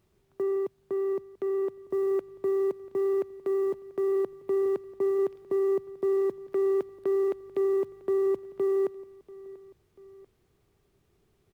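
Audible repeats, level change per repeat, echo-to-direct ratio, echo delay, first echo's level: 2, −5.0 dB, −19.0 dB, 689 ms, −20.0 dB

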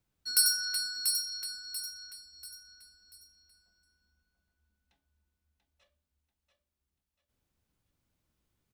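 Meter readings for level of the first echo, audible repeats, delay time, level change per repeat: −6.0 dB, 4, 688 ms, −9.0 dB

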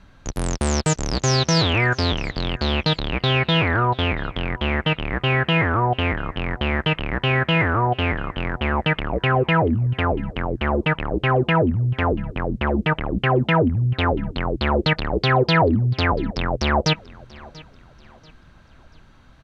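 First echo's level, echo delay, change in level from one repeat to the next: −22.0 dB, 687 ms, −9.0 dB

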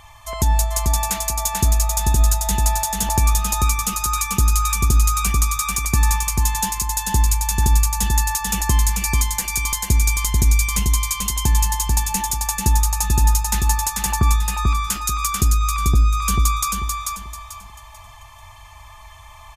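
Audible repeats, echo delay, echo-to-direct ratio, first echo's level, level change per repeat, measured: 4, 440 ms, −3.0 dB, −3.5 dB, −10.5 dB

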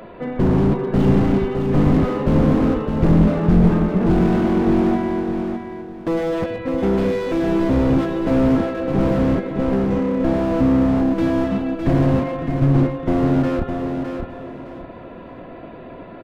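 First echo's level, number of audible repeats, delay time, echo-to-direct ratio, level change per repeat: −6.0 dB, 3, 610 ms, −5.5 dB, −12.0 dB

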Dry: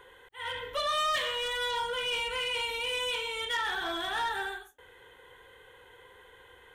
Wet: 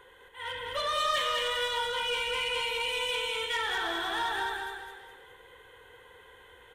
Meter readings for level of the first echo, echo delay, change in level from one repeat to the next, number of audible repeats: −3.0 dB, 207 ms, −7.5 dB, 4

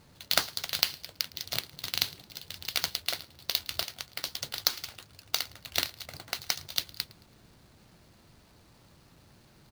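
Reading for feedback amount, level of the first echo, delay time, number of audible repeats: 40%, −23.0 dB, 110 ms, 2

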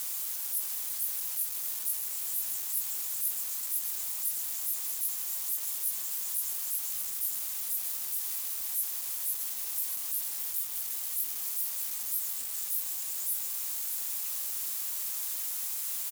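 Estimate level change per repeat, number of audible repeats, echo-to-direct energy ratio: repeats not evenly spaced, 1, −8.0 dB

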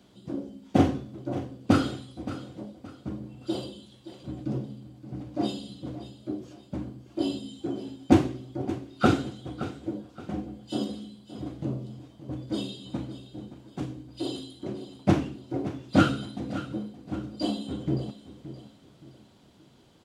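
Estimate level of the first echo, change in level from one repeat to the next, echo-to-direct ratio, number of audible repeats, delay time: −14.0 dB, −9.5 dB, −13.5 dB, 3, 571 ms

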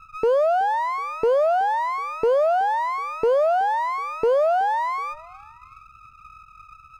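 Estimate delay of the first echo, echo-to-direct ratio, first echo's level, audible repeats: 374 ms, −21.5 dB, −22.5 dB, 2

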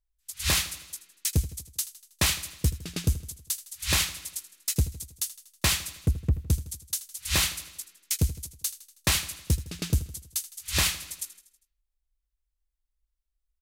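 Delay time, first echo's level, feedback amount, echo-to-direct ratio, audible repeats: 80 ms, −15.5 dB, 55%, −14.0 dB, 4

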